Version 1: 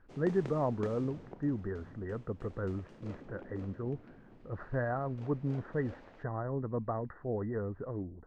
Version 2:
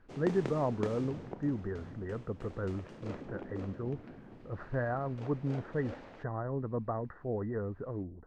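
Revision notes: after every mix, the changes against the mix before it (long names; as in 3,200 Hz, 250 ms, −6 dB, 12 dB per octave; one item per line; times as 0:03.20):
background +5.5 dB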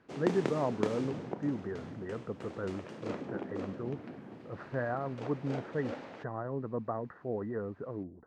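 background +5.0 dB
master: add high-pass filter 140 Hz 12 dB per octave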